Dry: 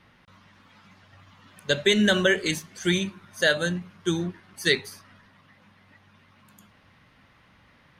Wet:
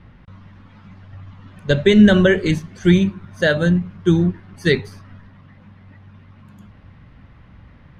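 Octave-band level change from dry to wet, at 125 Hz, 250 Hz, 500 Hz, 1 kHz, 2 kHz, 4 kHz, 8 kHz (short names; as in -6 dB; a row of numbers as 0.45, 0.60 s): +14.0 dB, +12.0 dB, +7.5 dB, +4.5 dB, +2.5 dB, -1.0 dB, n/a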